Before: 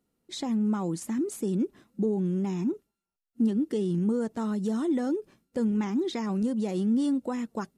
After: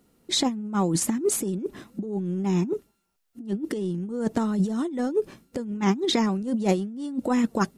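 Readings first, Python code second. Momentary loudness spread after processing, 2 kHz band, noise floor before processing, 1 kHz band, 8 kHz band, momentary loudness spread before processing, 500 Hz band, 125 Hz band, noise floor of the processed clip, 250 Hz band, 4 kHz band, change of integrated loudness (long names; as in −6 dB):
9 LU, +8.0 dB, below −85 dBFS, +8.0 dB, can't be measured, 7 LU, +4.0 dB, +3.0 dB, −73 dBFS, +1.0 dB, +12.5 dB, +2.5 dB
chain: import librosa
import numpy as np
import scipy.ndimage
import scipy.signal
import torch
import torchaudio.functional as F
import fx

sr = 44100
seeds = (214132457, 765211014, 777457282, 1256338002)

y = fx.over_compress(x, sr, threshold_db=-32.0, ratio=-0.5)
y = F.gain(torch.from_numpy(y), 8.0).numpy()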